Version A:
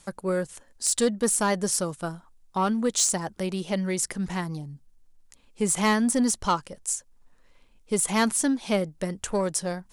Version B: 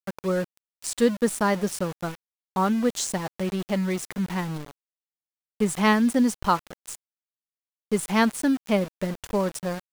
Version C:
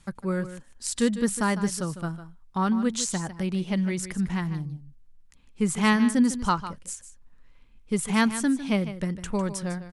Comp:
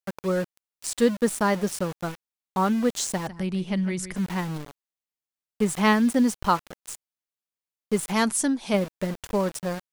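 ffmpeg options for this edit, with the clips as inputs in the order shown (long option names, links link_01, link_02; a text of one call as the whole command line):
ffmpeg -i take0.wav -i take1.wav -i take2.wav -filter_complex "[1:a]asplit=3[link_01][link_02][link_03];[link_01]atrim=end=3.272[link_04];[2:a]atrim=start=3.268:end=4.162[link_05];[link_02]atrim=start=4.158:end=8.132[link_06];[0:a]atrim=start=8.128:end=8.742[link_07];[link_03]atrim=start=8.738[link_08];[link_04][link_05]acrossfade=duration=0.004:curve1=hsin:curve2=hsin[link_09];[link_09][link_06]acrossfade=duration=0.004:curve1=hsin:curve2=hsin[link_10];[link_10][link_07]acrossfade=duration=0.004:curve1=hsin:curve2=hsin[link_11];[link_11][link_08]acrossfade=duration=0.004:curve1=hsin:curve2=hsin" out.wav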